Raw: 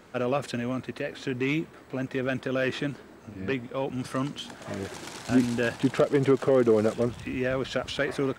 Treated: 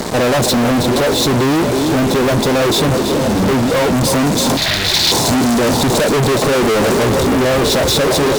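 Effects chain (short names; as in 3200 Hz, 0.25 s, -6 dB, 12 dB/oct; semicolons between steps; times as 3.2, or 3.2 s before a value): flange 1.8 Hz, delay 4.3 ms, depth 3.7 ms, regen -69%; in parallel at +0.5 dB: compressor, threshold -37 dBFS, peak gain reduction 15.5 dB; on the sum: brick-wall FIR band-stop 1100–3400 Hz; on a send: thinning echo 0.319 s, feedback 71%, high-pass 170 Hz, level -14.5 dB; on the sum: fuzz box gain 52 dB, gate -52 dBFS; 4.57–5.12 graphic EQ 125/250/500/1000/2000/4000/8000 Hz -3/-11/-8/-7/+7/+11/-7 dB; gain +1 dB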